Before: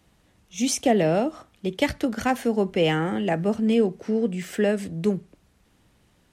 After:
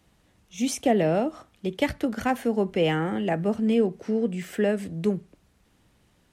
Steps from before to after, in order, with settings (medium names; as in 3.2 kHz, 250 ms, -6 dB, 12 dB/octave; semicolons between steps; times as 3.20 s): dynamic bell 5.7 kHz, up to -5 dB, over -45 dBFS, Q 0.79; trim -1.5 dB